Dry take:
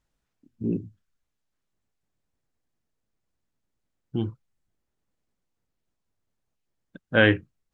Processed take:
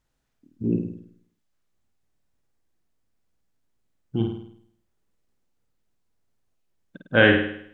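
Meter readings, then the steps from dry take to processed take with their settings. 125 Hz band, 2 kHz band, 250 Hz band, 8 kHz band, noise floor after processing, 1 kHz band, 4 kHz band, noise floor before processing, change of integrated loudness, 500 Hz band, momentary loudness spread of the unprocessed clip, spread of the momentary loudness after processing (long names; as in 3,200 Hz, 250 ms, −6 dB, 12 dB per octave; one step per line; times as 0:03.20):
+1.5 dB, +3.5 dB, +3.0 dB, can't be measured, −75 dBFS, +3.5 dB, +3.0 dB, −81 dBFS, +3.0 dB, +3.0 dB, 14 LU, 17 LU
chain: flutter between parallel walls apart 8.9 metres, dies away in 0.65 s
level +1.5 dB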